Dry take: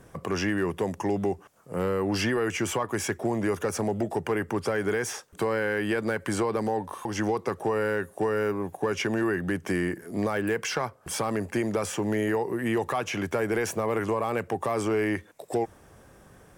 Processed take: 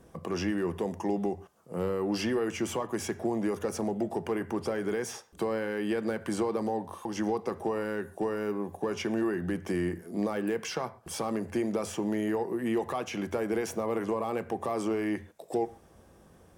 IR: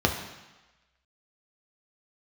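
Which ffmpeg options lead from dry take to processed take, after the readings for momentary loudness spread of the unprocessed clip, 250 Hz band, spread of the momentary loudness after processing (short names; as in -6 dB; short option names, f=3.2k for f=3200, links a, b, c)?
4 LU, -2.0 dB, 5 LU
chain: -filter_complex "[0:a]asplit=2[a][b];[1:a]atrim=start_sample=2205,atrim=end_sample=6174[c];[b][c]afir=irnorm=-1:irlink=0,volume=-21dB[d];[a][d]amix=inputs=2:normalize=0,volume=-6.5dB"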